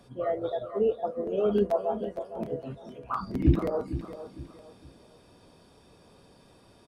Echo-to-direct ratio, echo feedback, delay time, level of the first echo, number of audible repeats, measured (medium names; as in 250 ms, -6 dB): -11.5 dB, 33%, 458 ms, -12.0 dB, 3